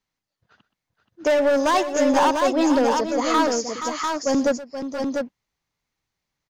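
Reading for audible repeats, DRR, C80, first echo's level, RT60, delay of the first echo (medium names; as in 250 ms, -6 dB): 3, no reverb, no reverb, -17.0 dB, no reverb, 124 ms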